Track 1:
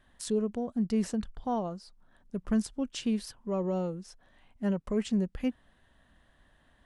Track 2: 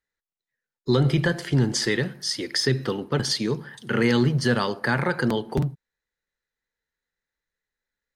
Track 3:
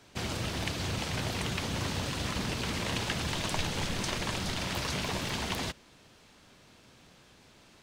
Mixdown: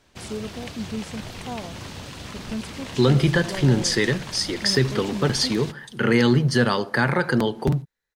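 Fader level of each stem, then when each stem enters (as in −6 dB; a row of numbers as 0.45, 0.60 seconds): −3.0, +2.5, −3.5 decibels; 0.00, 2.10, 0.00 seconds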